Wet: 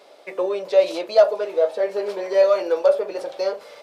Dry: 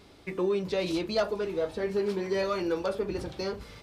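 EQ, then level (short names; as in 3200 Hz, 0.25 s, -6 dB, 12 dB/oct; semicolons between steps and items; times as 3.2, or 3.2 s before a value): resonant high-pass 580 Hz, resonance Q 4.9; +3.0 dB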